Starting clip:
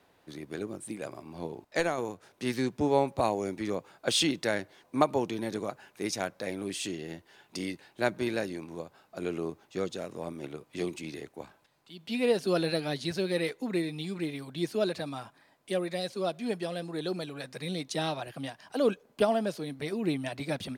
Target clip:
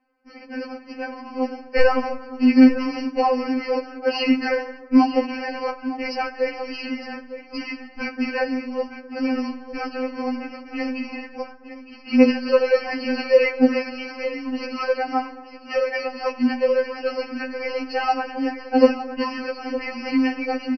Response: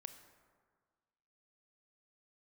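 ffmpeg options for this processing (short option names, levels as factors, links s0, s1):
-filter_complex "[0:a]aemphasis=mode=reproduction:type=75fm,agate=range=0.158:threshold=0.00251:ratio=16:detection=peak,asubboost=boost=8:cutoff=94,alimiter=limit=0.106:level=0:latency=1:release=309,dynaudnorm=f=390:g=5:m=1.58,aecho=1:1:910:0.224,aresample=11025,acrusher=bits=4:mode=log:mix=0:aa=0.000001,aresample=44100,asuperstop=centerf=3600:order=20:qfactor=3,asplit=2[s0][s1];[1:a]atrim=start_sample=2205[s2];[s1][s2]afir=irnorm=-1:irlink=0,volume=2.82[s3];[s0][s3]amix=inputs=2:normalize=0,afftfilt=real='re*3.46*eq(mod(b,12),0)':imag='im*3.46*eq(mod(b,12),0)':win_size=2048:overlap=0.75,volume=1.58"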